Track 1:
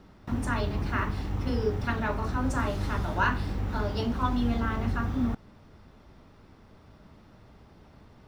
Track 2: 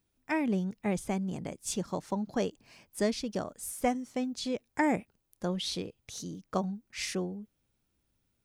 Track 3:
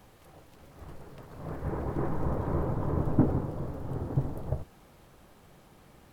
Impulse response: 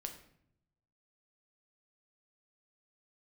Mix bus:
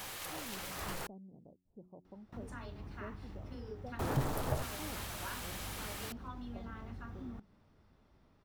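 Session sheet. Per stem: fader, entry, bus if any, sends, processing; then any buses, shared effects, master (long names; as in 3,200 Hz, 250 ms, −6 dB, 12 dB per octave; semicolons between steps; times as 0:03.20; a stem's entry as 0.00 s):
−13.5 dB, 2.05 s, no send, downward compressor 2 to 1, threshold −32 dBFS, peak gain reduction 7 dB
−19.5 dB, 0.00 s, no send, inverse Chebyshev low-pass filter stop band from 2,000 Hz, stop band 50 dB; hum removal 91.32 Hz, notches 4
+0.5 dB, 0.00 s, muted 0:01.07–0:03.99, no send, tilt shelving filter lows −10 dB, about 870 Hz; power curve on the samples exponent 0.7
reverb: not used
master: no processing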